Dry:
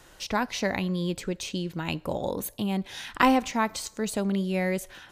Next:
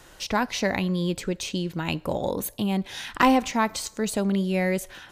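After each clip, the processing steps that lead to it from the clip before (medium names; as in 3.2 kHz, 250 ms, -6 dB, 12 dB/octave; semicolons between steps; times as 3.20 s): saturation -11 dBFS, distortion -22 dB; trim +3 dB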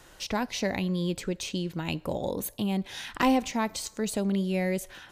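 dynamic bell 1.3 kHz, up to -6 dB, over -38 dBFS, Q 1.2; trim -3 dB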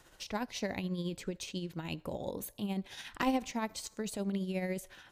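tremolo 14 Hz, depth 47%; trim -5.5 dB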